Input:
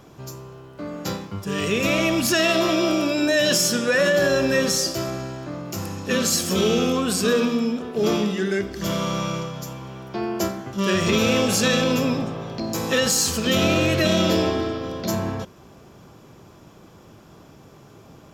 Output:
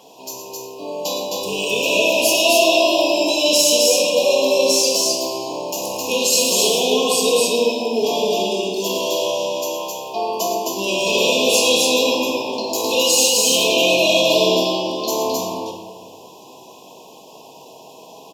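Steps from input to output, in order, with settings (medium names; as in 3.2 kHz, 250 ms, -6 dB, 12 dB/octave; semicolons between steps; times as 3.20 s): high-pass 570 Hz 12 dB/octave; in parallel at +2 dB: compression, threshold -32 dBFS, peak gain reduction 14 dB; on the sum: brick-wall FIR band-stop 1.1–2.4 kHz; doubling 16 ms -12.5 dB; on a send: loudspeakers at several distances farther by 38 m -10 dB, 90 m -2 dB; on the sum: simulated room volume 850 m³, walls mixed, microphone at 1.7 m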